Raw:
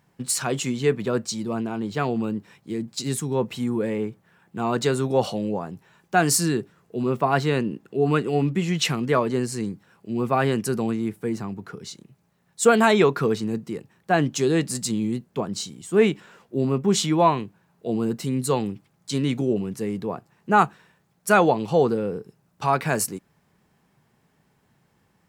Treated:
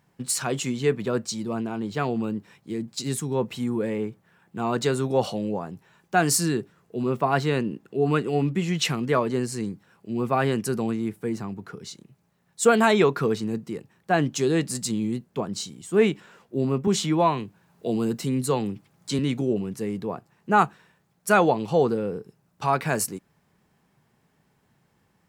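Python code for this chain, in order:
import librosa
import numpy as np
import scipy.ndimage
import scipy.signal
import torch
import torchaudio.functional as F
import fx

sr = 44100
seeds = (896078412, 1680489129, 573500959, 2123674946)

y = fx.band_squash(x, sr, depth_pct=40, at=(16.87, 19.19))
y = F.gain(torch.from_numpy(y), -1.5).numpy()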